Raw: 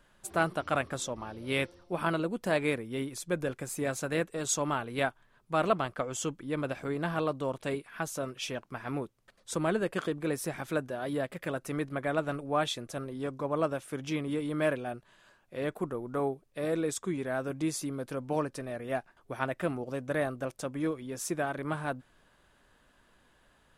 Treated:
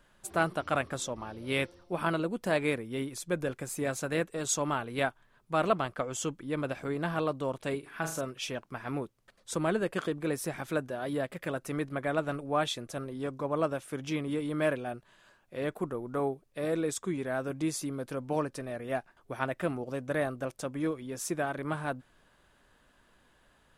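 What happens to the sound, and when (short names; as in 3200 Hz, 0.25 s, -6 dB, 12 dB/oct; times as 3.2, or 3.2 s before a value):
7.79–8.21 flutter echo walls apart 6.5 m, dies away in 0.39 s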